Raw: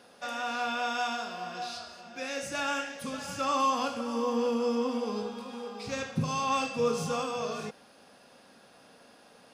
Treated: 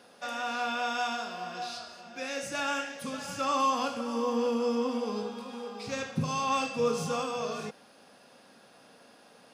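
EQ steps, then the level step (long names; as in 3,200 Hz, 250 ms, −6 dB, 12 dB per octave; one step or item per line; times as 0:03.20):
high-pass filter 94 Hz
0.0 dB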